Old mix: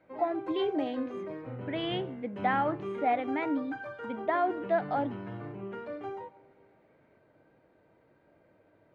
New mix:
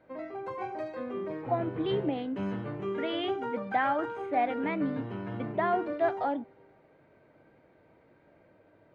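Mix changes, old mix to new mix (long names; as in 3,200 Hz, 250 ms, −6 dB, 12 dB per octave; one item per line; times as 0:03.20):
speech: entry +1.30 s
background +3.0 dB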